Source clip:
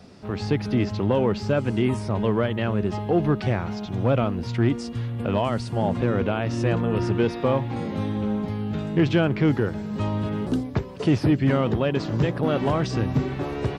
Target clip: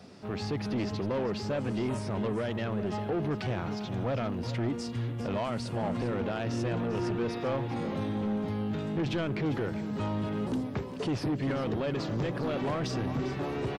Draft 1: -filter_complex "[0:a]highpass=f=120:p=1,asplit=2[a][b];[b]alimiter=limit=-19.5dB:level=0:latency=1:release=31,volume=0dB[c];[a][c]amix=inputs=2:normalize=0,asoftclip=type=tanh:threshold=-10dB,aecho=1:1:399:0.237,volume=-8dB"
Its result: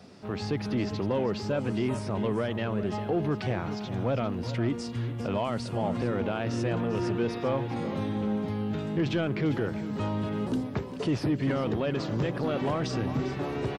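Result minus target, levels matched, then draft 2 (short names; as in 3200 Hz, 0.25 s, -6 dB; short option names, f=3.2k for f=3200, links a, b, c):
soft clip: distortion -9 dB
-filter_complex "[0:a]highpass=f=120:p=1,asplit=2[a][b];[b]alimiter=limit=-19.5dB:level=0:latency=1:release=31,volume=0dB[c];[a][c]amix=inputs=2:normalize=0,asoftclip=type=tanh:threshold=-17.5dB,aecho=1:1:399:0.237,volume=-8dB"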